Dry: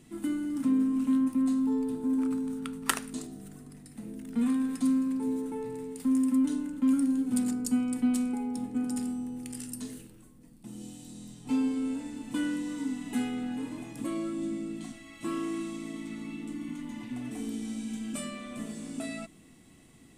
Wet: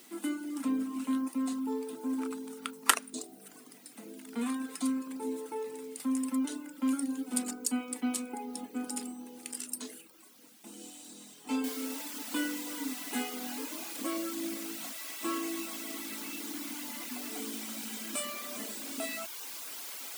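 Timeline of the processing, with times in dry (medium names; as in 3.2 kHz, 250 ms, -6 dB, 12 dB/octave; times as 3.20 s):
11.64 s: noise floor step -62 dB -45 dB
whole clip: reverb removal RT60 0.7 s; Bessel high-pass 430 Hz, order 4; band-stop 1.8 kHz, Q 19; trim +4.5 dB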